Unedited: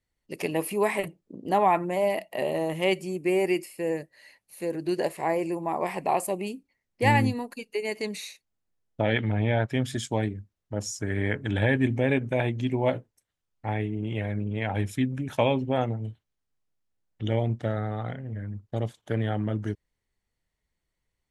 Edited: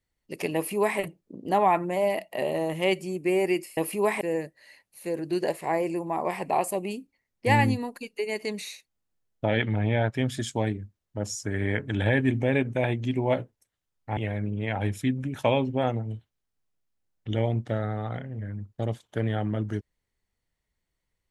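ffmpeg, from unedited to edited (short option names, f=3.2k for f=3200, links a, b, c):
-filter_complex "[0:a]asplit=4[a][b][c][d];[a]atrim=end=3.772[e];[b]atrim=start=0.548:end=0.992[f];[c]atrim=start=3.768:end=13.732[g];[d]atrim=start=14.108[h];[e][f]acrossfade=d=0.004:c1=hsin:c2=hsin[i];[i][g]acrossfade=d=0.004:c1=hsin:c2=hsin[j];[j][h]acrossfade=d=0.004:c1=hsin:c2=hsin"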